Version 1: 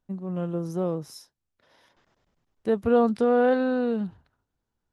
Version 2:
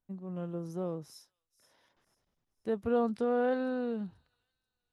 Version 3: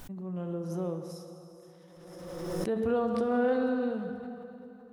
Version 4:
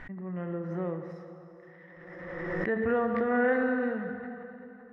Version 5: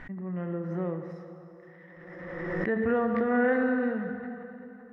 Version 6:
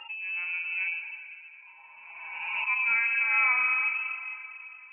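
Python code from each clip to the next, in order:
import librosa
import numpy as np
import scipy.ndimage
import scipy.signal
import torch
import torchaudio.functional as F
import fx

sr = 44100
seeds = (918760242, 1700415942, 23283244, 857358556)

y1 = fx.echo_wet_highpass(x, sr, ms=485, feedback_pct=34, hz=5500.0, wet_db=-13.5)
y1 = y1 * librosa.db_to_amplitude(-8.5)
y2 = fx.rev_plate(y1, sr, seeds[0], rt60_s=3.3, hf_ratio=0.75, predelay_ms=0, drr_db=5.0)
y2 = fx.pre_swell(y2, sr, db_per_s=33.0)
y3 = fx.lowpass_res(y2, sr, hz=1900.0, q=12.0)
y4 = fx.peak_eq(y3, sr, hz=220.0, db=3.0, octaves=1.2)
y5 = fx.hpss_only(y4, sr, part='harmonic')
y5 = fx.freq_invert(y5, sr, carrier_hz=2800)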